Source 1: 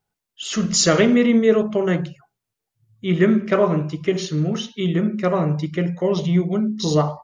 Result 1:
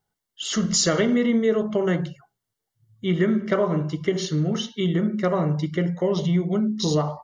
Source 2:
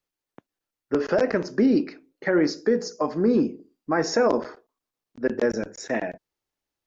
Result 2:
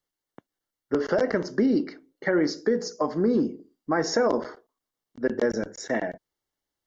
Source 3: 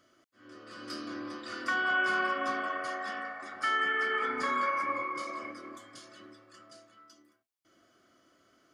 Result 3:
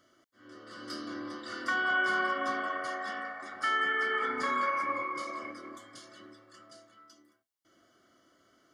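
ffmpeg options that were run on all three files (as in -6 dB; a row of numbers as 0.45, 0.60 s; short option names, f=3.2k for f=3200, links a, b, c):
-af "acompressor=threshold=-19dB:ratio=2.5,asuperstop=centerf=2500:order=8:qfactor=6.5"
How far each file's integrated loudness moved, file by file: -3.5, -2.0, 0.0 LU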